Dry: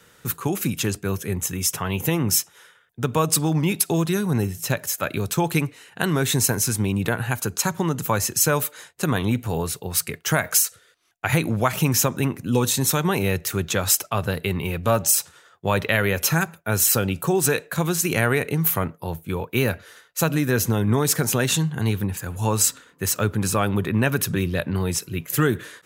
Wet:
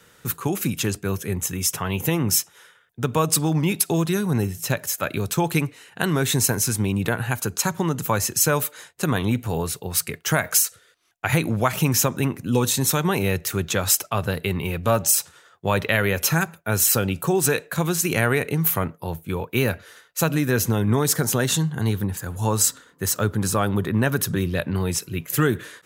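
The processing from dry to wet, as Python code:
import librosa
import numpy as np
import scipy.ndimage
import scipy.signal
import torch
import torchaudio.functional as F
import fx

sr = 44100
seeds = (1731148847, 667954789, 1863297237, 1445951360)

y = fx.peak_eq(x, sr, hz=2500.0, db=-7.0, octaves=0.34, at=(21.06, 24.46))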